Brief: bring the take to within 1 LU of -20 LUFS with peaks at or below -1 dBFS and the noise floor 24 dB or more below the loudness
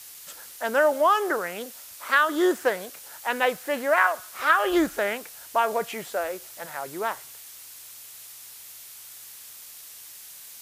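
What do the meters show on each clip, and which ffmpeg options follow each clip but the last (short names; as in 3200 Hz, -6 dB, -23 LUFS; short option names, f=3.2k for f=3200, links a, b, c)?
noise floor -45 dBFS; noise floor target -49 dBFS; loudness -25.0 LUFS; peak -6.0 dBFS; loudness target -20.0 LUFS
-> -af "afftdn=nr=6:nf=-45"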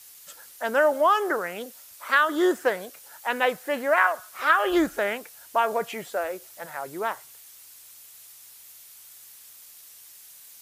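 noise floor -49 dBFS; loudness -24.5 LUFS; peak -6.0 dBFS; loudness target -20.0 LUFS
-> -af "volume=4.5dB"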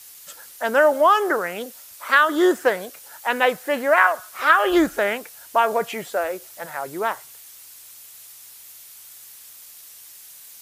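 loudness -20.0 LUFS; peak -1.5 dBFS; noise floor -44 dBFS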